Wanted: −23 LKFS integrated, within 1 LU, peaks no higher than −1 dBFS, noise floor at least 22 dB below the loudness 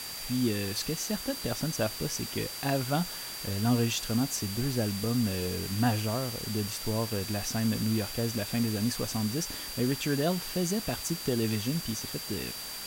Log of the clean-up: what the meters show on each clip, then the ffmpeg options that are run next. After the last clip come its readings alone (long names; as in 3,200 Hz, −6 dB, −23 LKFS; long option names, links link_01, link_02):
interfering tone 4,700 Hz; level of the tone −41 dBFS; background noise floor −39 dBFS; target noise floor −53 dBFS; integrated loudness −30.5 LKFS; sample peak −14.5 dBFS; target loudness −23.0 LKFS
→ -af "bandreject=frequency=4700:width=30"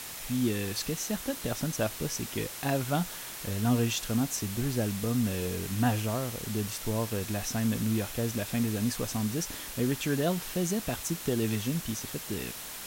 interfering tone none found; background noise floor −41 dBFS; target noise floor −53 dBFS
→ -af "afftdn=noise_reduction=12:noise_floor=-41"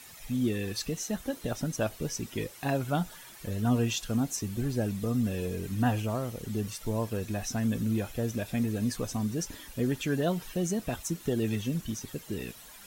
background noise floor −50 dBFS; target noise floor −54 dBFS
→ -af "afftdn=noise_reduction=6:noise_floor=-50"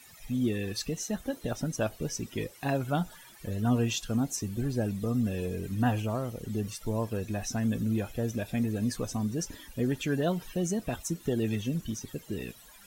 background noise floor −53 dBFS; target noise floor −54 dBFS
→ -af "afftdn=noise_reduction=6:noise_floor=-53"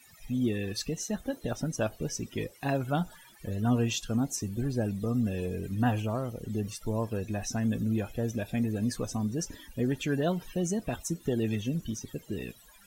background noise floor −56 dBFS; integrated loudness −32.0 LKFS; sample peak −15.0 dBFS; target loudness −23.0 LKFS
→ -af "volume=9dB"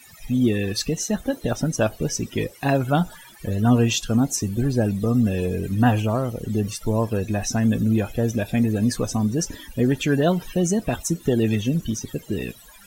integrated loudness −23.0 LKFS; sample peak −6.0 dBFS; background noise floor −47 dBFS